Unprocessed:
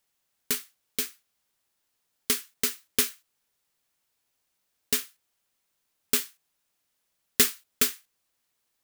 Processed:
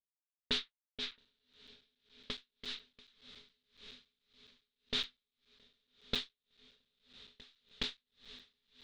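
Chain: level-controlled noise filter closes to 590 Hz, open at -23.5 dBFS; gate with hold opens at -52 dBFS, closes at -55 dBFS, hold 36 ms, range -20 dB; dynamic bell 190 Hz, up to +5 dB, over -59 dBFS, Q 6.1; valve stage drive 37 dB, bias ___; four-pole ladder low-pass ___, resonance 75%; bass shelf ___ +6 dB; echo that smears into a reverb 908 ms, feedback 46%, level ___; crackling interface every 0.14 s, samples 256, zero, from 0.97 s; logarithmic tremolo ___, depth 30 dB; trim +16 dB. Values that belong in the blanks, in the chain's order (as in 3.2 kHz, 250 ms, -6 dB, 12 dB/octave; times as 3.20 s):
0.65, 4 kHz, 450 Hz, -15.5 dB, 1.8 Hz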